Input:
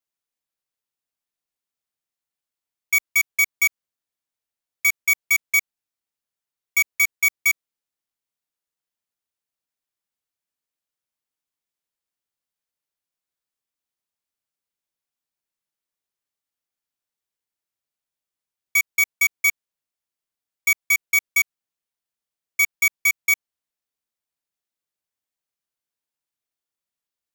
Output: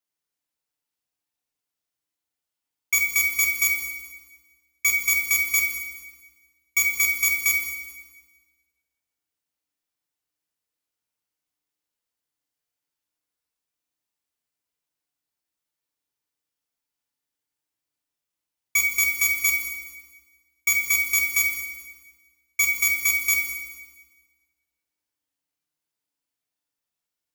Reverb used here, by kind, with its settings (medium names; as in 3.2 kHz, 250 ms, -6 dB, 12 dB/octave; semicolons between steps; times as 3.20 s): FDN reverb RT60 1.3 s, low-frequency decay 1.25×, high-frequency decay 1×, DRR 0 dB; trim -1 dB